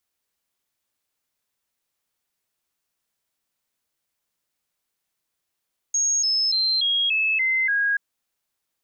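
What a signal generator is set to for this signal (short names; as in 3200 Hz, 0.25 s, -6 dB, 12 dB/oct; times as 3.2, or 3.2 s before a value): stepped sine 6560 Hz down, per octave 3, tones 7, 0.29 s, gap 0.00 s -18.5 dBFS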